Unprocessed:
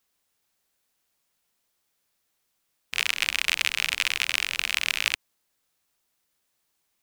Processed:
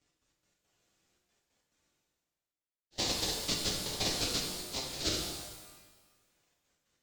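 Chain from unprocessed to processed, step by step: frequency-domain pitch shifter +9.5 st; gate -31 dBFS, range -23 dB; elliptic band-pass 550–7500 Hz; reverse; upward compressor, threshold -53 dBFS; reverse; trance gate "x.x.x.xxxx" 140 bpm; in parallel at -3 dB: decimation with a swept rate 40×, swing 60% 1.2 Hz; on the sum: pitch-shifted reverb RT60 1.3 s, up +12 st, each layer -8 dB, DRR -1 dB; trim -3 dB

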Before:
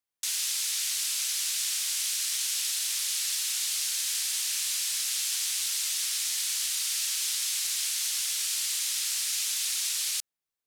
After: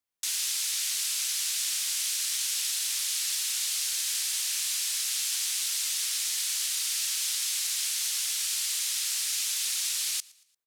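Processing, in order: 2.06–3.55 s: high-pass 370 Hz 24 dB/octave; on a send: feedback delay 115 ms, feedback 41%, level -23.5 dB

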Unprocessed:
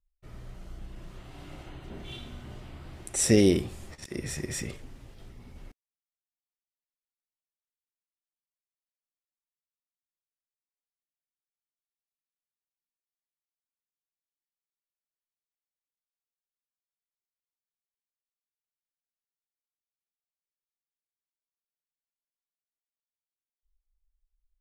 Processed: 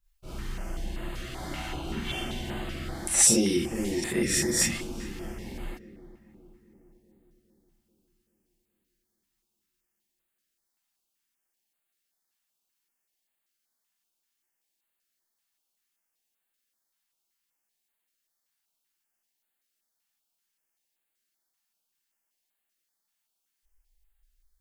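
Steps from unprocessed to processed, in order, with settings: bass shelf 220 Hz +4 dB; on a send: filtered feedback delay 412 ms, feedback 59%, low-pass 2 kHz, level -18 dB; on the sum: compression 4:1, threshold -32 dBFS, peak gain reduction 15.5 dB; bass shelf 470 Hz -8.5 dB; gated-style reverb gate 80 ms rising, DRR -6.5 dB; step-sequenced notch 5.2 Hz 430–5600 Hz; trim +8 dB

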